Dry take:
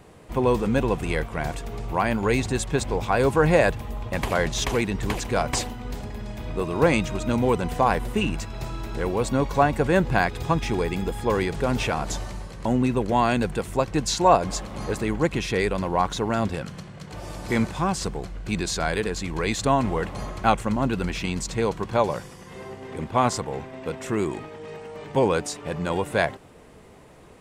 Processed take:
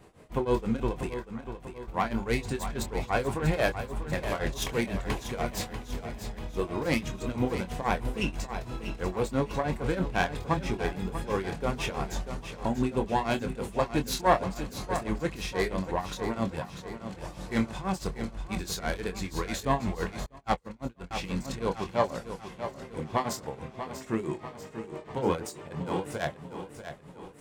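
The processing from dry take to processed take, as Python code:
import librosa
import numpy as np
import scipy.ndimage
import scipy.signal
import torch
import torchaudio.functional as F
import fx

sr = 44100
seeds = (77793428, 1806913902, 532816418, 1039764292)

y = fx.self_delay(x, sr, depth_ms=0.13)
y = fx.tremolo_shape(y, sr, shape='triangle', hz=6.1, depth_pct=95)
y = fx.chorus_voices(y, sr, voices=6, hz=0.33, base_ms=24, depth_ms=3.1, mix_pct=30)
y = fx.ladder_bandpass(y, sr, hz=1200.0, resonance_pct=35, at=(1.13, 1.87), fade=0.02)
y = fx.echo_feedback(y, sr, ms=641, feedback_pct=49, wet_db=-10.0)
y = fx.upward_expand(y, sr, threshold_db=-41.0, expansion=2.5, at=(20.26, 21.11))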